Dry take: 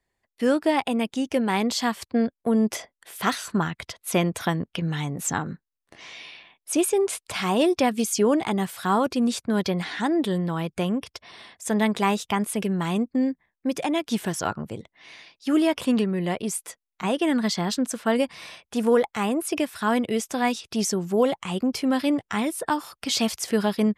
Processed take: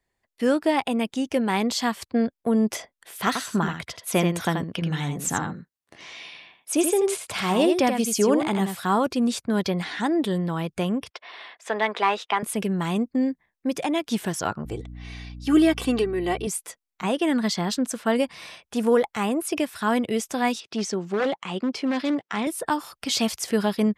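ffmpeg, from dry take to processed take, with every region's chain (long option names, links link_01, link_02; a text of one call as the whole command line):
ffmpeg -i in.wav -filter_complex "[0:a]asettb=1/sr,asplit=3[link_01][link_02][link_03];[link_01]atrim=end=3.274[link_04];[link_02]atrim=start=3.27:end=8.8,asetpts=PTS-STARTPTS,afade=type=in:duration=0.004:curve=qsin,afade=type=out:start_time=5.526:duration=0.004:curve=qsin,highpass=63,aecho=1:1:82:0.473,atrim=end_sample=243873[link_05];[link_03]atrim=start=8.796[link_06];[link_04][link_05]acrossfade=duration=0.004:curve1=hsin:curve2=qsin[link_07];[link_07][link_06]acrossfade=duration=0.004:curve1=qsin:curve2=hsin,asettb=1/sr,asplit=3[link_08][link_09][link_10];[link_08]atrim=end=11.104[link_11];[link_09]atrim=start=11.1:end=12.43,asetpts=PTS-STARTPTS,afade=type=in:duration=0.004:curve=qsin,afade=type=out:start_time=1.326:duration=0.004:curve=qsin,asplit=2[link_12][link_13];[link_13]highpass=frequency=720:poles=1,volume=11dB,asoftclip=type=tanh:threshold=-9.5dB[link_14];[link_12][link_14]amix=inputs=2:normalize=0,lowpass=frequency=3800:poles=1,volume=-6dB,acrossover=split=310 4300:gain=0.0794 1 0.178[link_15][link_16][link_17];[link_15][link_16][link_17]amix=inputs=3:normalize=0[link_18];[link_10]atrim=start=12.426[link_19];[link_11][link_18]acrossfade=duration=0.004:curve1=hsin:curve2=qsin[link_20];[link_20][link_19]acrossfade=duration=0.004:curve1=qsin:curve2=hsin,asettb=1/sr,asplit=3[link_21][link_22][link_23];[link_21]atrim=end=14.654[link_24];[link_22]atrim=start=14.65:end=16.47,asetpts=PTS-STARTPTS,afade=type=in:duration=0.004:curve=qsin,afade=type=out:start_time=1.816:duration=0.004:curve=qsin,aecho=1:1:2.6:0.8,atrim=end_sample=80262,aeval=exprs='val(0)+0.0141*(sin(2*PI*60*n/s)+sin(2*PI*2*60*n/s)/2+sin(2*PI*3*60*n/s)/3+sin(2*PI*4*60*n/s)/4+sin(2*PI*5*60*n/s)/5)':channel_layout=same[link_25];[link_23]atrim=start=16.466[link_26];[link_24][link_25]acrossfade=duration=0.004:curve1=hsin:curve2=qsin[link_27];[link_27][link_26]acrossfade=duration=0.004:curve1=qsin:curve2=hsin,asettb=1/sr,asplit=3[link_28][link_29][link_30];[link_28]atrim=end=20.604[link_31];[link_29]atrim=start=20.6:end=22.47,asetpts=PTS-STARTPTS,afade=type=in:duration=0.004:curve=qsin,afade=type=out:start_time=1.866:duration=0.004:curve=qsin,aeval=exprs='0.141*(abs(mod(val(0)/0.141+3,4)-2)-1)':channel_layout=same,highpass=200,lowpass=5200[link_32];[link_30]atrim=start=22.466[link_33];[link_31][link_32]acrossfade=duration=0.004:curve1=hsin:curve2=qsin[link_34];[link_34][link_33]acrossfade=duration=0.004:curve1=qsin:curve2=hsin" out.wav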